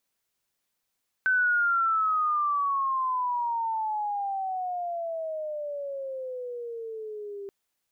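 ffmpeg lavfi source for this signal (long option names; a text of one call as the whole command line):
ffmpeg -f lavfi -i "aevalsrc='pow(10,(-20-15*t/6.23)/20)*sin(2*PI*1530*6.23/(-23.5*log(2)/12)*(exp(-23.5*log(2)/12*t/6.23)-1))':duration=6.23:sample_rate=44100" out.wav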